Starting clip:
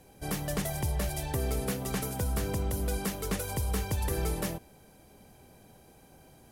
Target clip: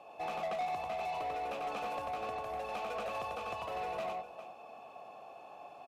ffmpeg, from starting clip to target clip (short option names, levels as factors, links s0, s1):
-filter_complex "[0:a]acompressor=threshold=0.0178:ratio=3,asplit=2[s0][s1];[s1]aecho=0:1:104|448:0.668|0.178[s2];[s0][s2]amix=inputs=2:normalize=0,asetrate=48951,aresample=44100,asplit=3[s3][s4][s5];[s3]bandpass=f=730:t=q:w=8,volume=1[s6];[s4]bandpass=f=1090:t=q:w=8,volume=0.501[s7];[s5]bandpass=f=2440:t=q:w=8,volume=0.355[s8];[s6][s7][s8]amix=inputs=3:normalize=0,lowshelf=f=190:g=9.5,asplit=2[s9][s10];[s10]highpass=f=720:p=1,volume=7.08,asoftclip=type=tanh:threshold=0.0141[s11];[s9][s11]amix=inputs=2:normalize=0,lowpass=f=5700:p=1,volume=0.501,volume=2.24"